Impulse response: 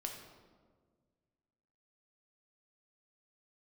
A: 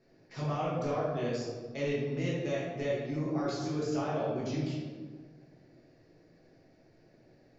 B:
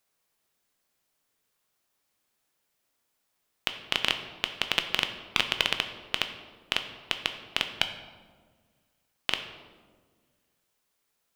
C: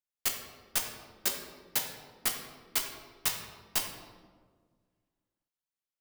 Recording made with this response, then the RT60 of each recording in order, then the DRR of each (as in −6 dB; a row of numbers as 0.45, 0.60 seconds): C; 1.6, 1.6, 1.6 seconds; −7.5, 6.5, 1.5 decibels